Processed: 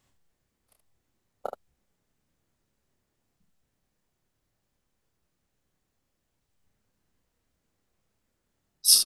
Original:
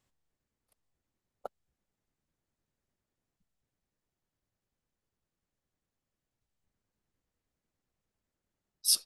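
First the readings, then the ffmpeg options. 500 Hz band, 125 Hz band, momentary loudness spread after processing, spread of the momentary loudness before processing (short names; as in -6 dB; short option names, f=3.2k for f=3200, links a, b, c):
+8.5 dB, +9.0 dB, 20 LU, 20 LU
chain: -af "acontrast=79,aecho=1:1:29|75:0.562|0.447"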